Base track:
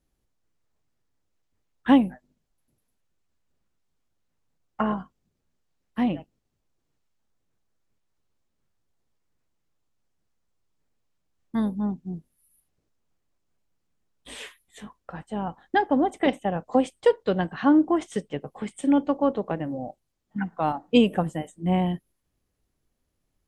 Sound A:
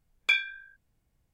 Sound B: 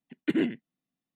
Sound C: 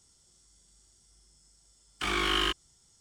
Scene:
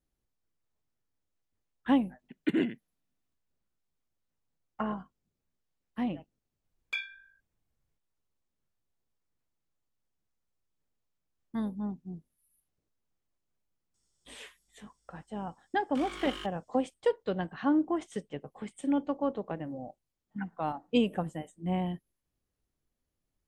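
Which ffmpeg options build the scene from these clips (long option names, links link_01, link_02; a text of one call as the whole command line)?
ffmpeg -i bed.wav -i cue0.wav -i cue1.wav -i cue2.wav -filter_complex "[0:a]volume=-8dB[link_01];[2:a]atrim=end=1.15,asetpts=PTS-STARTPTS,volume=-2dB,afade=type=in:duration=0.004:curve=hsin,afade=type=out:start_time=1.146:duration=0.004:curve=hsin,adelay=2190[link_02];[1:a]atrim=end=1.33,asetpts=PTS-STARTPTS,volume=-10.5dB,afade=type=in:duration=0.004:curve=hsin,afade=type=out:start_time=1.326:duration=0.004:curve=hsin,adelay=6640[link_03];[3:a]atrim=end=3,asetpts=PTS-STARTPTS,volume=-14.5dB,afade=type=in:duration=0.004:curve=hsin,afade=type=out:start_time=2.996:duration=0.004:curve=hsin,adelay=13940[link_04];[link_01][link_02][link_03][link_04]amix=inputs=4:normalize=0" out.wav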